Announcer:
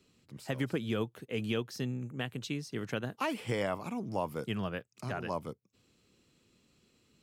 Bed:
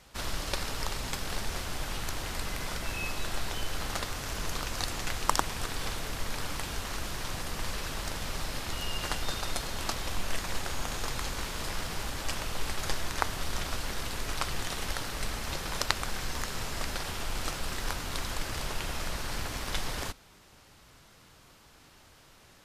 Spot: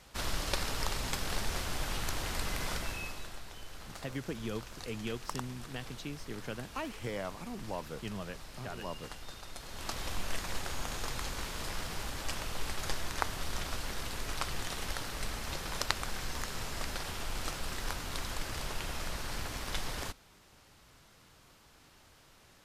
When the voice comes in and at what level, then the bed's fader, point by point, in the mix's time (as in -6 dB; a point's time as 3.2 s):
3.55 s, -5.5 dB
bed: 2.75 s -0.5 dB
3.42 s -13.5 dB
9.52 s -13.5 dB
10 s -3.5 dB